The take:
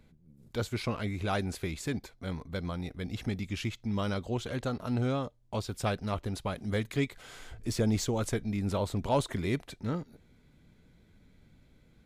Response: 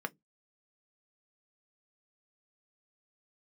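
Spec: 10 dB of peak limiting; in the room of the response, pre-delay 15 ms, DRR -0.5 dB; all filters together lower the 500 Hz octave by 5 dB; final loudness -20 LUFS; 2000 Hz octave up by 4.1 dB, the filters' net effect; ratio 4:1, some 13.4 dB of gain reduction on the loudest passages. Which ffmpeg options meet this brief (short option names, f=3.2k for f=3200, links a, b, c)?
-filter_complex "[0:a]equalizer=f=500:t=o:g=-6.5,equalizer=f=2k:t=o:g=5.5,acompressor=threshold=-41dB:ratio=4,alimiter=level_in=10.5dB:limit=-24dB:level=0:latency=1,volume=-10.5dB,asplit=2[a][b];[1:a]atrim=start_sample=2205,adelay=15[c];[b][c]afir=irnorm=-1:irlink=0,volume=-2.5dB[d];[a][d]amix=inputs=2:normalize=0,volume=22.5dB"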